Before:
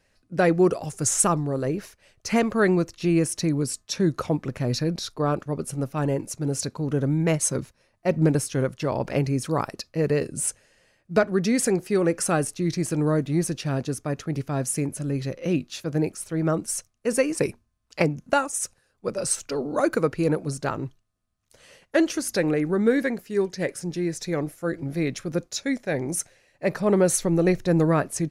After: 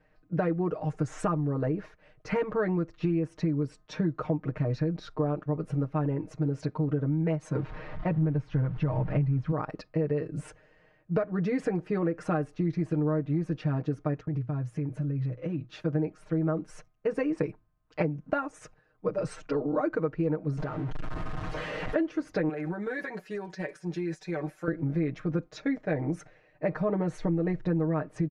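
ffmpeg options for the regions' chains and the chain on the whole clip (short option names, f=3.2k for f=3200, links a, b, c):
-filter_complex "[0:a]asettb=1/sr,asplit=3[a][b][c];[a]atrim=end=7.564[d];[b]atrim=start=7.56:end=9.52,asetpts=PTS-STARTPTS,afade=t=in:d=0.004:c=qsin,afade=t=out:st=1.956:d=0.004:c=qsin,aeval=exprs='val(0)+0.5*0.0158*sgn(val(0))':c=same,lowpass=4.3k,asubboost=boost=9:cutoff=160[e];[c]atrim=start=9.516[f];[d][e]acrossfade=d=0.004:c1=hsin:c2=qsin[g];[g][f]acrossfade=d=0.004:c1=qsin:c2=hsin,asettb=1/sr,asplit=3[h][i][j];[h]atrim=end=14.204[k];[i]atrim=start=14.2:end=15.69,asetpts=PTS-STARTPTS,afade=t=in:d=0.004:c=qsin,afade=t=out:st=1.486:d=0.004:c=qsin,agate=range=-33dB:threshold=-37dB:ratio=3:release=100:detection=peak,equalizer=f=120:w=4:g=12,acompressor=threshold=-32dB:ratio=6:attack=3.2:release=140:knee=1:detection=peak[l];[j]atrim=start=15.686[m];[k][l]acrossfade=d=0.004:c1=hsin:c2=qsin[n];[n][m]acrossfade=d=0.004:c1=qsin:c2=hsin,asettb=1/sr,asplit=3[o][p][q];[o]atrim=end=20.574[r];[p]atrim=start=20.57:end=21.96,asetpts=PTS-STARTPTS,afade=t=in:d=0.004:c=qsin,afade=t=out:st=1.386:d=0.004:c=qsin,aeval=exprs='val(0)+0.5*0.0422*sgn(val(0))':c=same,acompressor=threshold=-32dB:ratio=12:attack=3.2:release=140:knee=1:detection=peak[s];[q]atrim=start=21.956[t];[r][s]acrossfade=d=0.004:c1=hsin:c2=qsin[u];[u][t]acrossfade=d=0.004:c1=qsin:c2=hsin,asettb=1/sr,asplit=3[v][w][x];[v]atrim=end=22.494[y];[w]atrim=start=22.49:end=24.68,asetpts=PTS-STARTPTS,afade=t=in:d=0.004:c=qsin,afade=t=out:st=2.186:d=0.004:c=qsin,aemphasis=mode=production:type=riaa,aecho=1:1:5.3:0.63,atrim=end_sample=96579,acompressor=threshold=-29dB:ratio=12:attack=3.2:release=140:knee=1:detection=peak[z];[x]atrim=start=24.676[aa];[y][z]acrossfade=d=0.004:c1=hsin:c2=qsin[ab];[ab][aa]acrossfade=d=0.004:c1=qsin:c2=hsin,lowpass=1.7k,aecho=1:1:6.5:0.93,acompressor=threshold=-25dB:ratio=6"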